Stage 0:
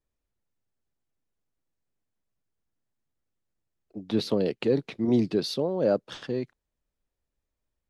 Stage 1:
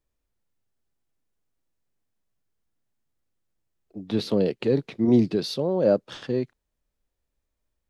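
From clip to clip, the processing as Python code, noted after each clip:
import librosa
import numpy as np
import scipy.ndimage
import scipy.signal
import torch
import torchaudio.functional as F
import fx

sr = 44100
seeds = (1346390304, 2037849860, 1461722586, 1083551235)

y = fx.hpss(x, sr, part='percussive', gain_db=-6)
y = y * 10.0 ** (5.0 / 20.0)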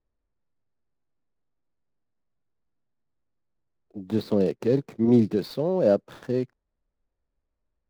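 y = scipy.ndimage.median_filter(x, 15, mode='constant')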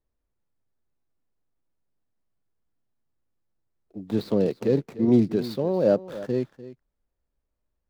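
y = x + 10.0 ** (-16.0 / 20.0) * np.pad(x, (int(297 * sr / 1000.0), 0))[:len(x)]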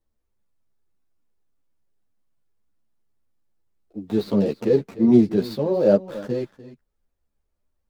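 y = fx.ensemble(x, sr)
y = y * 10.0 ** (5.5 / 20.0)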